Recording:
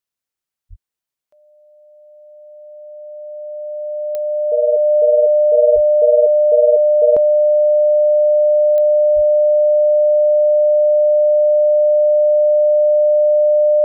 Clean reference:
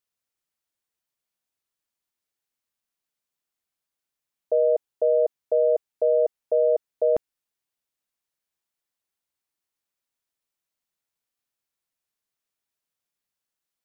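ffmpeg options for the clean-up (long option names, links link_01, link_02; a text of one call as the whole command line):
ffmpeg -i in.wav -filter_complex "[0:a]adeclick=threshold=4,bandreject=frequency=600:width=30,asplit=3[link_01][link_02][link_03];[link_01]afade=type=out:start_time=0.69:duration=0.02[link_04];[link_02]highpass=frequency=140:width=0.5412,highpass=frequency=140:width=1.3066,afade=type=in:start_time=0.69:duration=0.02,afade=type=out:start_time=0.81:duration=0.02[link_05];[link_03]afade=type=in:start_time=0.81:duration=0.02[link_06];[link_04][link_05][link_06]amix=inputs=3:normalize=0,asplit=3[link_07][link_08][link_09];[link_07]afade=type=out:start_time=5.74:duration=0.02[link_10];[link_08]highpass=frequency=140:width=0.5412,highpass=frequency=140:width=1.3066,afade=type=in:start_time=5.74:duration=0.02,afade=type=out:start_time=5.86:duration=0.02[link_11];[link_09]afade=type=in:start_time=5.86:duration=0.02[link_12];[link_10][link_11][link_12]amix=inputs=3:normalize=0,asplit=3[link_13][link_14][link_15];[link_13]afade=type=out:start_time=9.15:duration=0.02[link_16];[link_14]highpass=frequency=140:width=0.5412,highpass=frequency=140:width=1.3066,afade=type=in:start_time=9.15:duration=0.02,afade=type=out:start_time=9.27:duration=0.02[link_17];[link_15]afade=type=in:start_time=9.27:duration=0.02[link_18];[link_16][link_17][link_18]amix=inputs=3:normalize=0,asetnsamples=nb_out_samples=441:pad=0,asendcmd='5.55 volume volume -3.5dB',volume=0dB" out.wav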